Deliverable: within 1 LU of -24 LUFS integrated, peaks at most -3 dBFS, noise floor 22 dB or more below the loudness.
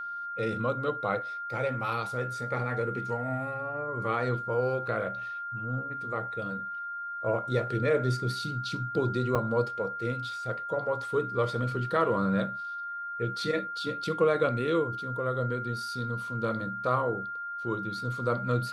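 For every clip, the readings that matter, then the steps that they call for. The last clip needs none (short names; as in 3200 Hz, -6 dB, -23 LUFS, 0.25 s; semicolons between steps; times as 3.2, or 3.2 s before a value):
dropouts 1; longest dropout 5.7 ms; steady tone 1400 Hz; tone level -34 dBFS; loudness -30.5 LUFS; peak -13.0 dBFS; loudness target -24.0 LUFS
-> interpolate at 9.35, 5.7 ms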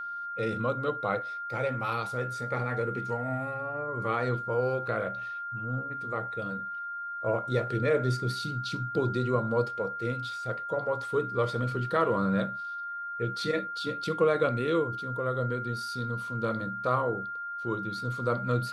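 dropouts 0; steady tone 1400 Hz; tone level -34 dBFS
-> notch 1400 Hz, Q 30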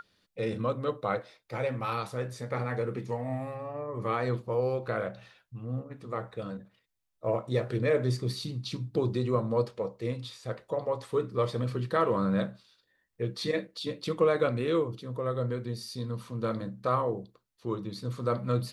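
steady tone none; loudness -32.0 LUFS; peak -13.5 dBFS; loudness target -24.0 LUFS
-> gain +8 dB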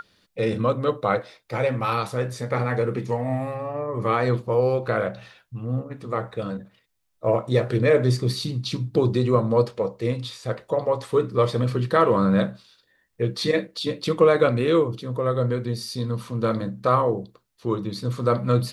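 loudness -24.0 LUFS; peak -5.5 dBFS; noise floor -68 dBFS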